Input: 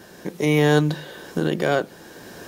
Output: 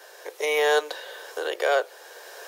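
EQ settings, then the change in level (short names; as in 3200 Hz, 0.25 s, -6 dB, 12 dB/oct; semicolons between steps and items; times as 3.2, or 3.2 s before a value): steep high-pass 440 Hz 48 dB/oct; 0.0 dB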